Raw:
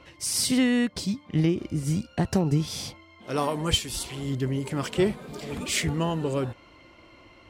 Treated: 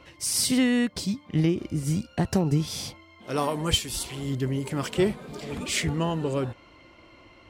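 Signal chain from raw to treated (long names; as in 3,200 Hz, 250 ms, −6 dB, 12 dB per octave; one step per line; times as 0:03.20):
high-shelf EQ 12,000 Hz +4.5 dB, from 0:05.13 −5.5 dB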